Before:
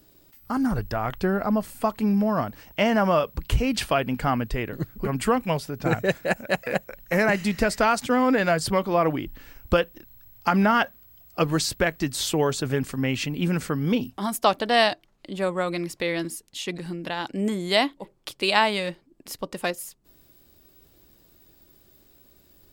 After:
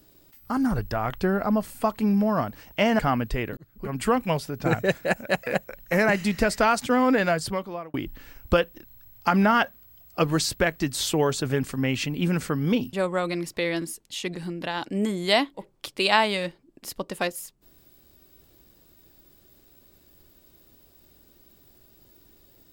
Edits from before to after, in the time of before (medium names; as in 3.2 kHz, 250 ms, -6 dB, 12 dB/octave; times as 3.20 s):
2.99–4.19 s: delete
4.77–5.34 s: fade in
8.39–9.14 s: fade out
14.13–15.36 s: delete